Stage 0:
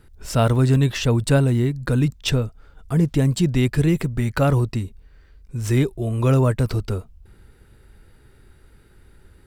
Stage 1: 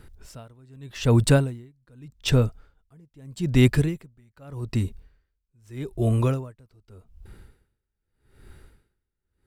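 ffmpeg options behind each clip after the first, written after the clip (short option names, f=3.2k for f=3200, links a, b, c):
-af "aeval=exprs='val(0)*pow(10,-38*(0.5-0.5*cos(2*PI*0.82*n/s))/20)':c=same,volume=3dB"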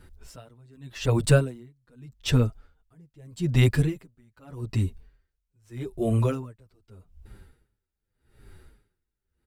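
-filter_complex "[0:a]asplit=2[a][b];[b]adelay=7.7,afreqshift=-2.7[c];[a][c]amix=inputs=2:normalize=1,volume=1dB"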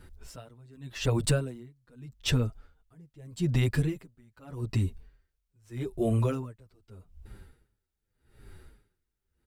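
-af "acompressor=threshold=-22dB:ratio=6"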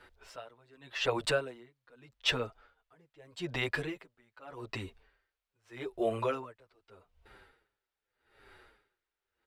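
-filter_complex "[0:a]acrossover=split=440 4300:gain=0.0794 1 0.158[a][b][c];[a][b][c]amix=inputs=3:normalize=0,volume=4.5dB"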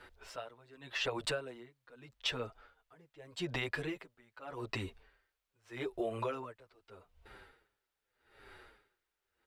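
-af "acompressor=threshold=-35dB:ratio=6,volume=2dB"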